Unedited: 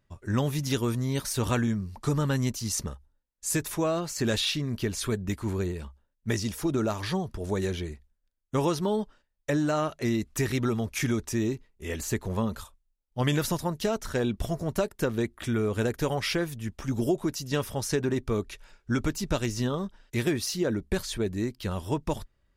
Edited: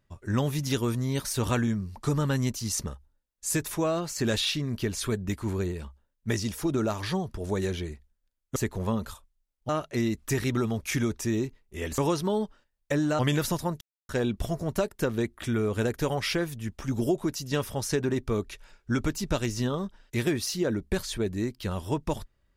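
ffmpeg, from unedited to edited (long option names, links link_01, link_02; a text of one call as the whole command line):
ffmpeg -i in.wav -filter_complex "[0:a]asplit=7[link_01][link_02][link_03][link_04][link_05][link_06][link_07];[link_01]atrim=end=8.562[link_08];[link_02]atrim=start=12.058:end=13.192[link_09];[link_03]atrim=start=9.768:end=12.062[link_10];[link_04]atrim=start=8.558:end=9.772[link_11];[link_05]atrim=start=13.188:end=13.81,asetpts=PTS-STARTPTS,afade=type=out:start_time=0.618:duration=0.004:curve=hsin[link_12];[link_06]atrim=start=13.81:end=14.09,asetpts=PTS-STARTPTS,volume=0[link_13];[link_07]atrim=start=14.09,asetpts=PTS-STARTPTS,afade=type=in:duration=0.004:curve=hsin[link_14];[link_08][link_09]acrossfade=duration=0.004:curve1=hsin:curve2=hsin[link_15];[link_15][link_10]acrossfade=duration=0.004:curve1=hsin:curve2=hsin[link_16];[link_16][link_11]acrossfade=duration=0.004:curve1=hsin:curve2=hsin[link_17];[link_12][link_13][link_14]concat=n=3:v=0:a=1[link_18];[link_17][link_18]acrossfade=duration=0.004:curve1=hsin:curve2=hsin" out.wav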